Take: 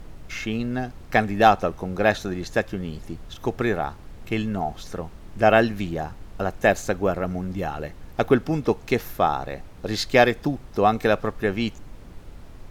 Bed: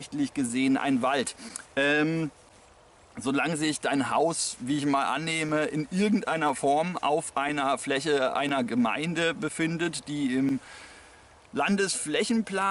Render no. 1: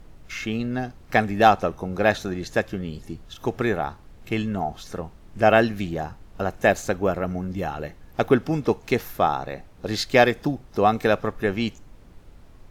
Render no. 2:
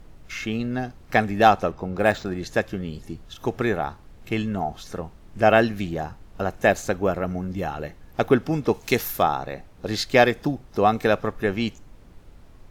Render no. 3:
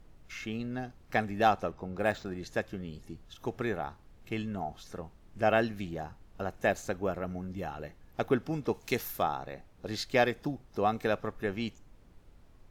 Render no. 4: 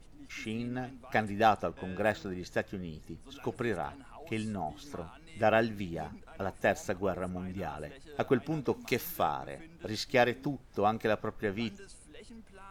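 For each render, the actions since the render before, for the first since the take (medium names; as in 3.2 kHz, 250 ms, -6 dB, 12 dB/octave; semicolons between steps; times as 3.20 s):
noise print and reduce 6 dB
1.71–2.39 s: decimation joined by straight lines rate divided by 4×; 8.74–9.23 s: treble shelf 3.4 kHz +11 dB
trim -9.5 dB
add bed -25.5 dB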